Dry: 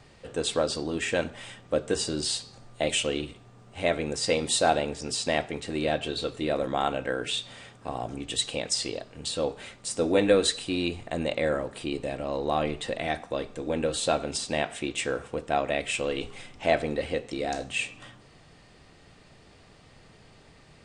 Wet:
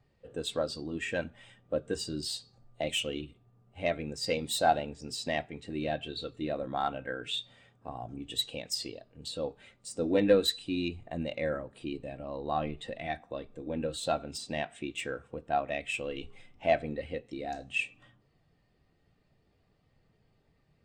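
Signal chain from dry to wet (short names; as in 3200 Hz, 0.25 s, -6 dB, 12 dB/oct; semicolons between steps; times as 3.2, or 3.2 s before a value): self-modulated delay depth 0.062 ms; dynamic EQ 470 Hz, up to -6 dB, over -38 dBFS, Q 0.99; spectral expander 1.5:1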